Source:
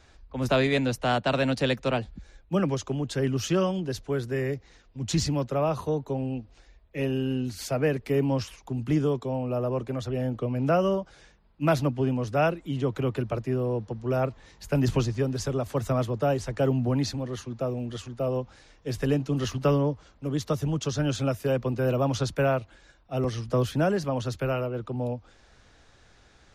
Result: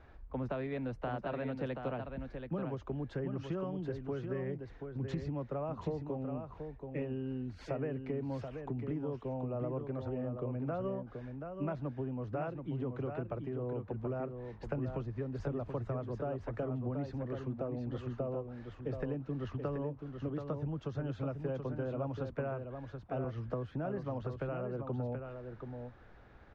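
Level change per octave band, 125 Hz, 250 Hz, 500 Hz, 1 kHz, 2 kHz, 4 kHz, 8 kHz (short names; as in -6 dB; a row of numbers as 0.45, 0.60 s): -10.5 dB, -10.5 dB, -11.0 dB, -12.5 dB, -15.5 dB, under -20 dB, under -30 dB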